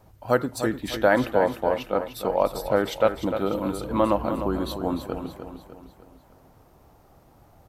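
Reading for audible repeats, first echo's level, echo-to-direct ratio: 4, −9.0 dB, −8.0 dB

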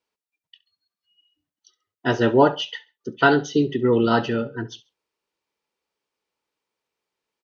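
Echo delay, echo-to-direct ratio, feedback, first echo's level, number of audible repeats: 68 ms, −19.0 dB, 29%, −19.5 dB, 2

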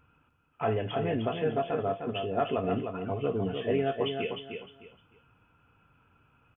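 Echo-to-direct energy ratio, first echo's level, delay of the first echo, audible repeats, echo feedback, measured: −5.5 dB, −6.0 dB, 305 ms, 3, 25%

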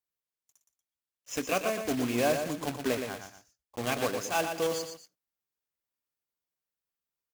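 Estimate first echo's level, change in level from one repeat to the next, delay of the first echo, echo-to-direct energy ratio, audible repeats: −7.0 dB, −9.5 dB, 118 ms, −6.5 dB, 2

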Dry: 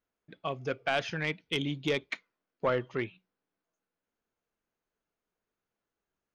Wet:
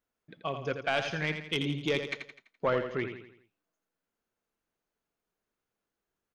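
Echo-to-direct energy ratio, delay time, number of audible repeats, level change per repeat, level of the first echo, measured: −7.0 dB, 84 ms, 4, −7.0 dB, −8.0 dB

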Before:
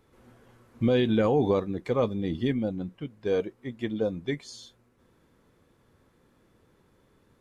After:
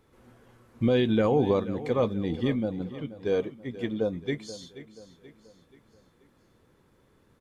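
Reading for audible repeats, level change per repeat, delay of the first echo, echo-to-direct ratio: 3, −7.0 dB, 481 ms, −14.0 dB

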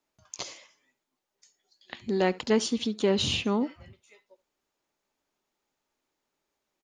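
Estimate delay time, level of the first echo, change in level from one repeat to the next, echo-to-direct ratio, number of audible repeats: 71 ms, −21.5 dB, repeats not evenly spaced, −21.5 dB, 1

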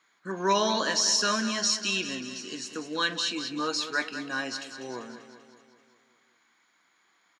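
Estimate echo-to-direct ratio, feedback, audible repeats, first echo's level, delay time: −9.0 dB, 58%, 6, −11.0 dB, 195 ms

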